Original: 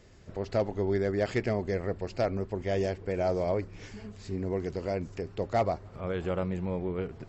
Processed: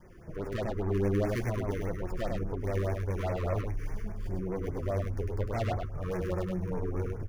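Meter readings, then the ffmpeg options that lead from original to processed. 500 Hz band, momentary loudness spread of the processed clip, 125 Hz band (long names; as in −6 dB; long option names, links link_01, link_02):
−4.0 dB, 8 LU, +3.0 dB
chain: -filter_complex "[0:a]adynamicequalizer=threshold=0.00708:dfrequency=470:dqfactor=2.3:tfrequency=470:tqfactor=2.3:attack=5:release=100:ratio=0.375:range=2.5:mode=cutabove:tftype=bell,aresample=11025,aresample=44100,acrossover=split=2100[link_01][link_02];[link_01]asubboost=boost=6:cutoff=74[link_03];[link_02]acrusher=samples=11:mix=1:aa=0.000001[link_04];[link_03][link_04]amix=inputs=2:normalize=0,asoftclip=type=tanh:threshold=-32.5dB,flanger=delay=5.5:depth=4.3:regen=37:speed=0.47:shape=sinusoidal,aecho=1:1:102:0.668,afftfilt=real='re*(1-between(b*sr/1024,670*pow(3800/670,0.5+0.5*sin(2*PI*4.9*pts/sr))/1.41,670*pow(3800/670,0.5+0.5*sin(2*PI*4.9*pts/sr))*1.41))':imag='im*(1-between(b*sr/1024,670*pow(3800/670,0.5+0.5*sin(2*PI*4.9*pts/sr))/1.41,670*pow(3800/670,0.5+0.5*sin(2*PI*4.9*pts/sr))*1.41))':win_size=1024:overlap=0.75,volume=7.5dB"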